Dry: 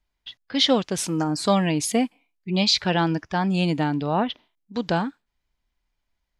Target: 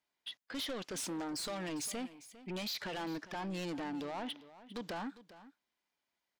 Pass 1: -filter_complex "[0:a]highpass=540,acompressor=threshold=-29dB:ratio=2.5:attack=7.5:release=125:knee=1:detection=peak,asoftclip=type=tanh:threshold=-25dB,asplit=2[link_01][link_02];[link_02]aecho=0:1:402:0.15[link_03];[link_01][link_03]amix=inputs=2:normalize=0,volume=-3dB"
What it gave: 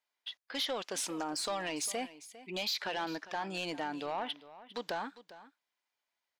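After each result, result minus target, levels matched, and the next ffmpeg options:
250 Hz band −5.5 dB; soft clipping: distortion −7 dB
-filter_complex "[0:a]highpass=260,acompressor=threshold=-29dB:ratio=2.5:attack=7.5:release=125:knee=1:detection=peak,asoftclip=type=tanh:threshold=-25dB,asplit=2[link_01][link_02];[link_02]aecho=0:1:402:0.15[link_03];[link_01][link_03]amix=inputs=2:normalize=0,volume=-3dB"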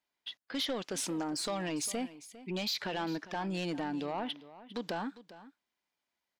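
soft clipping: distortion −7 dB
-filter_complex "[0:a]highpass=260,acompressor=threshold=-29dB:ratio=2.5:attack=7.5:release=125:knee=1:detection=peak,asoftclip=type=tanh:threshold=-33.5dB,asplit=2[link_01][link_02];[link_02]aecho=0:1:402:0.15[link_03];[link_01][link_03]amix=inputs=2:normalize=0,volume=-3dB"

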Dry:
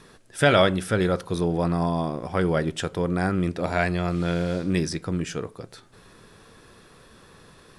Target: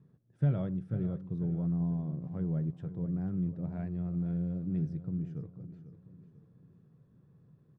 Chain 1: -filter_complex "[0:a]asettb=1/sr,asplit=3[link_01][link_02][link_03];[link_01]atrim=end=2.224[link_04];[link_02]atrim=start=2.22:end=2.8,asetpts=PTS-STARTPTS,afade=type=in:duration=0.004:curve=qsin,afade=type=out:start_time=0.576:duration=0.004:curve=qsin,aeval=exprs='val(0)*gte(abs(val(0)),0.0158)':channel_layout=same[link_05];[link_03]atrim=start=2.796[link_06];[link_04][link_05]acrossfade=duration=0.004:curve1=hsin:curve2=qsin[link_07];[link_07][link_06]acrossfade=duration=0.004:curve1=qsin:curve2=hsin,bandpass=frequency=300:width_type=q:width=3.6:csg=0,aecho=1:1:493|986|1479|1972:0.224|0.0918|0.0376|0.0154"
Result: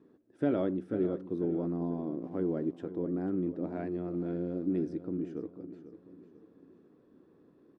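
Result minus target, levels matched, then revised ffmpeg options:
125 Hz band −9.0 dB
-filter_complex "[0:a]asettb=1/sr,asplit=3[link_01][link_02][link_03];[link_01]atrim=end=2.224[link_04];[link_02]atrim=start=2.22:end=2.8,asetpts=PTS-STARTPTS,afade=type=in:duration=0.004:curve=qsin,afade=type=out:start_time=0.576:duration=0.004:curve=qsin,aeval=exprs='val(0)*gte(abs(val(0)),0.0158)':channel_layout=same[link_05];[link_03]atrim=start=2.796[link_06];[link_04][link_05]acrossfade=duration=0.004:curve1=hsin:curve2=qsin[link_07];[link_07][link_06]acrossfade=duration=0.004:curve1=qsin:curve2=hsin,bandpass=frequency=140:width_type=q:width=3.6:csg=0,aecho=1:1:493|986|1479|1972:0.224|0.0918|0.0376|0.0154"

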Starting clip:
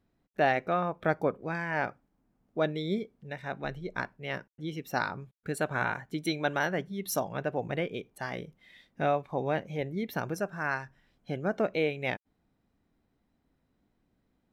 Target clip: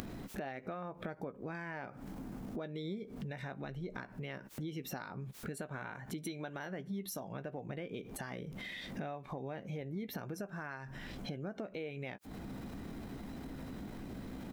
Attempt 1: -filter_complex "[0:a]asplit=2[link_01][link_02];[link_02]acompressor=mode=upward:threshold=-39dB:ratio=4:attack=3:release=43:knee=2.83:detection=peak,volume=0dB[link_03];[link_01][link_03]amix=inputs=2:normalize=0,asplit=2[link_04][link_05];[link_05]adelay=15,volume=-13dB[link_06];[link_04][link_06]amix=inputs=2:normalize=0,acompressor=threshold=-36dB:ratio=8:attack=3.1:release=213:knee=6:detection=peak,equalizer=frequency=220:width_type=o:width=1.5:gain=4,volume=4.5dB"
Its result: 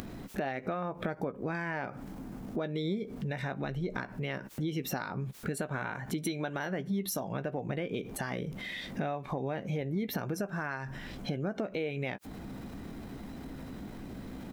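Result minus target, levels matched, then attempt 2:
downward compressor: peak gain reduction −8 dB
-filter_complex "[0:a]asplit=2[link_01][link_02];[link_02]acompressor=mode=upward:threshold=-39dB:ratio=4:attack=3:release=43:knee=2.83:detection=peak,volume=0dB[link_03];[link_01][link_03]amix=inputs=2:normalize=0,asplit=2[link_04][link_05];[link_05]adelay=15,volume=-13dB[link_06];[link_04][link_06]amix=inputs=2:normalize=0,acompressor=threshold=-45dB:ratio=8:attack=3.1:release=213:knee=6:detection=peak,equalizer=frequency=220:width_type=o:width=1.5:gain=4,volume=4.5dB"

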